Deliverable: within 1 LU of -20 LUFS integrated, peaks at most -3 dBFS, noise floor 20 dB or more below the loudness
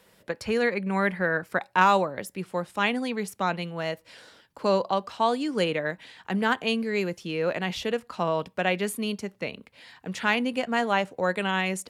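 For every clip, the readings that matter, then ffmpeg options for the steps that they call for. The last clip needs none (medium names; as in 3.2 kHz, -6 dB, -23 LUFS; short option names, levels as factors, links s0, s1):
loudness -27.0 LUFS; peak level -6.0 dBFS; loudness target -20.0 LUFS
-> -af "volume=2.24,alimiter=limit=0.708:level=0:latency=1"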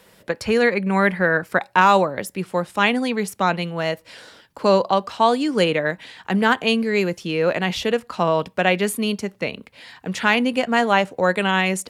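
loudness -20.5 LUFS; peak level -3.0 dBFS; noise floor -56 dBFS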